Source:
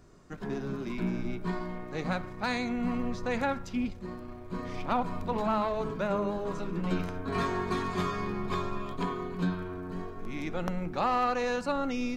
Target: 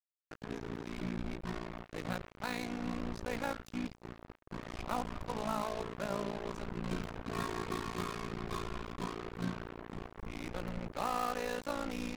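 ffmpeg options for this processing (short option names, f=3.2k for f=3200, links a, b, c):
-af "tremolo=f=57:d=0.824,acrusher=bits=5:mix=0:aa=0.5,volume=-4dB"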